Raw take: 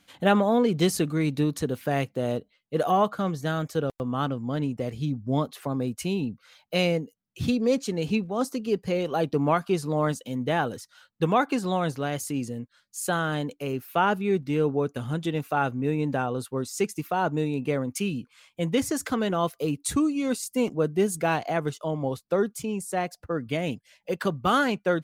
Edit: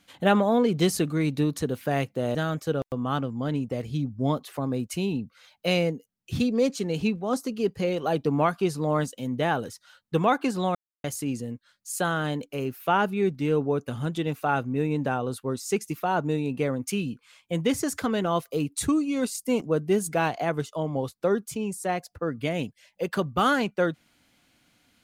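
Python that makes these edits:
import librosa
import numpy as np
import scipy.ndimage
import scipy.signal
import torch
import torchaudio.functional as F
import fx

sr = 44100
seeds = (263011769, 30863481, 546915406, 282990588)

y = fx.edit(x, sr, fx.cut(start_s=2.35, length_s=1.08),
    fx.silence(start_s=11.83, length_s=0.29), tone=tone)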